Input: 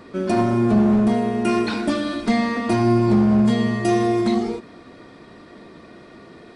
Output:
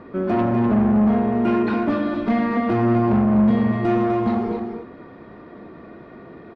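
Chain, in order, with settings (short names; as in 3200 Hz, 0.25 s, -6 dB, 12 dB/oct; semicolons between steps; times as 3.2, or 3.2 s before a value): LPF 1700 Hz 12 dB/oct; added harmonics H 5 -18 dB, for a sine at -9 dBFS; echo 0.25 s -7 dB; gain -2 dB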